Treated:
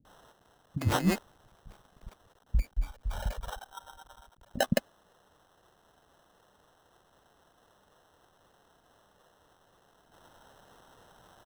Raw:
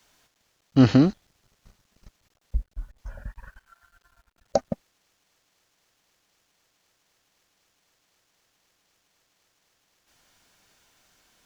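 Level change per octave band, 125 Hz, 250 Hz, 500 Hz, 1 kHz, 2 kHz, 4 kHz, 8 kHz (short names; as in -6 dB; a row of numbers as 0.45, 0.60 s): -7.0 dB, -12.0 dB, -6.0 dB, -1.0 dB, +2.5 dB, 0.0 dB, n/a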